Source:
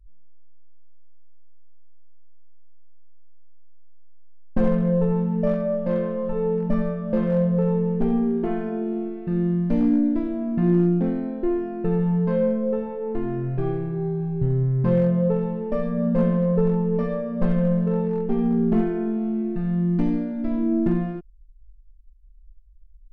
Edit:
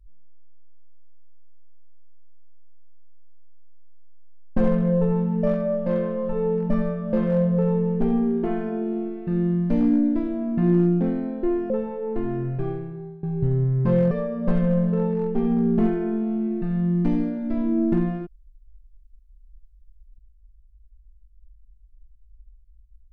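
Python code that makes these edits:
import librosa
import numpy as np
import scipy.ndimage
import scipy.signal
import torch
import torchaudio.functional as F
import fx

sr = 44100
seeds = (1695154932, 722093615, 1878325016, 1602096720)

y = fx.edit(x, sr, fx.cut(start_s=11.7, length_s=0.99),
    fx.fade_out_to(start_s=13.41, length_s=0.81, floor_db=-20.0),
    fx.cut(start_s=15.1, length_s=1.95), tone=tone)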